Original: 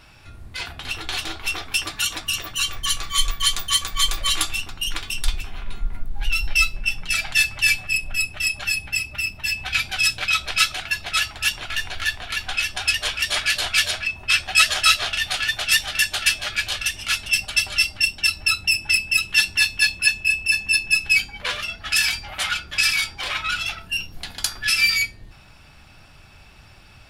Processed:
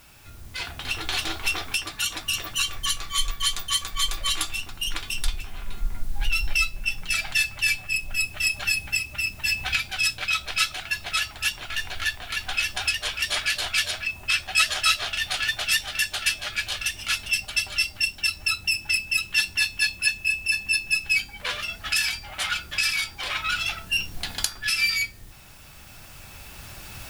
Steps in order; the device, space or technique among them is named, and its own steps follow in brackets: cheap recorder with automatic gain (white noise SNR 28 dB; recorder AGC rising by 5.4 dB/s); gain -5 dB

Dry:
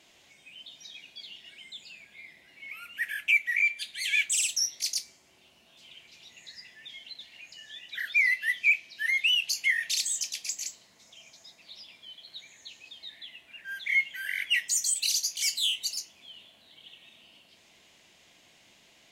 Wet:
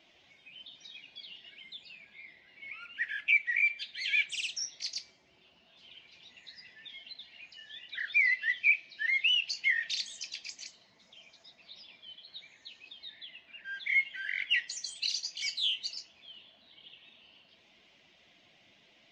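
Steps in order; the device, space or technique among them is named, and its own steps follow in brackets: clip after many re-uploads (LPF 4900 Hz 24 dB/oct; bin magnitudes rounded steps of 15 dB); gain -2 dB

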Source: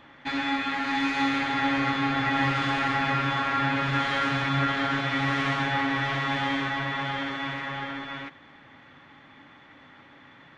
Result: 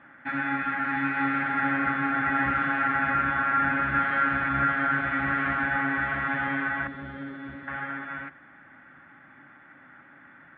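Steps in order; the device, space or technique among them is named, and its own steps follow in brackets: 6.87–7.68 band shelf 1400 Hz -12.5 dB 2.4 oct; sub-octave bass pedal (octaver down 1 oct, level -4 dB; speaker cabinet 83–2200 Hz, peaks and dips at 92 Hz -8 dB, 130 Hz -6 dB, 450 Hz -9 dB, 1000 Hz -5 dB, 1500 Hz +10 dB); gain -1.5 dB

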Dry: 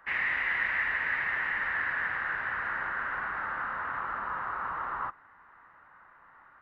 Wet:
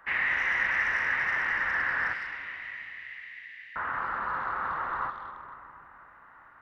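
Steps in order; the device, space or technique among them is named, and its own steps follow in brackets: 2.13–3.76 steep high-pass 1900 Hz 96 dB/oct; saturated reverb return (on a send at -8 dB: reverb RT60 2.8 s, pre-delay 0.11 s + soft clip -25.5 dBFS, distortion -17 dB); on the sum: gain +2 dB

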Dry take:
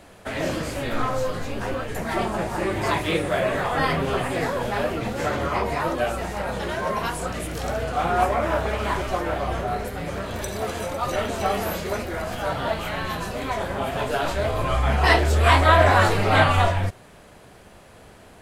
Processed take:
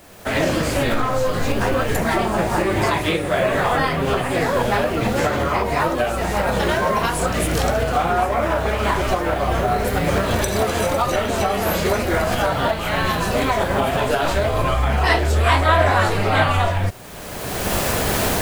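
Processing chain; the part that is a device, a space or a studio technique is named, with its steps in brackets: cheap recorder with automatic gain (white noise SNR 30 dB; recorder AGC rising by 26 dB/s)

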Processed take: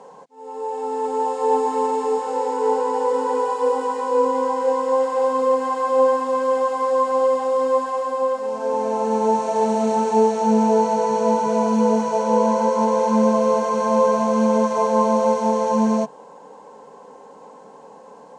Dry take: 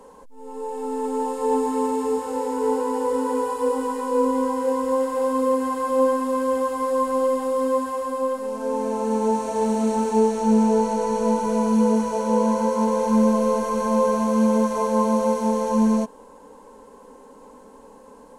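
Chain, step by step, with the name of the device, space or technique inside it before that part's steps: car door speaker (speaker cabinet 110–7400 Hz, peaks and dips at 150 Hz +8 dB, 260 Hz -8 dB, 730 Hz +9 dB); low shelf 79 Hz -8.5 dB; gain +2.5 dB

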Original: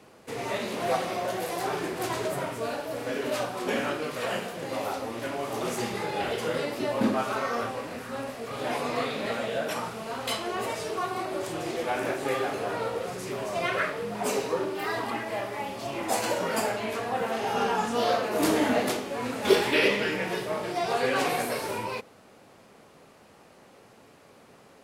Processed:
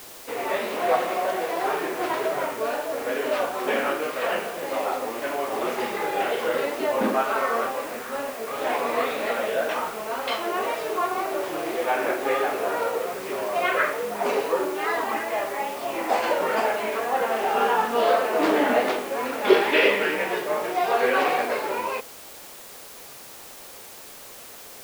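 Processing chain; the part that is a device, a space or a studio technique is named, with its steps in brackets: wax cylinder (BPF 360–2700 Hz; wow and flutter; white noise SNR 18 dB); gain +6 dB

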